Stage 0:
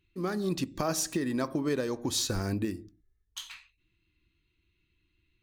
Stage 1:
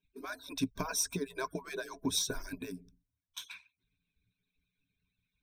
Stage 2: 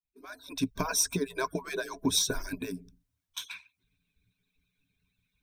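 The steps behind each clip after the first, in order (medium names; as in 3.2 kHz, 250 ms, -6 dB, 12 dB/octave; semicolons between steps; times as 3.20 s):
harmonic-percussive separation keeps percussive; rippled EQ curve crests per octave 1.6, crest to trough 14 dB; trim -4 dB
fade-in on the opening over 0.85 s; trim +5.5 dB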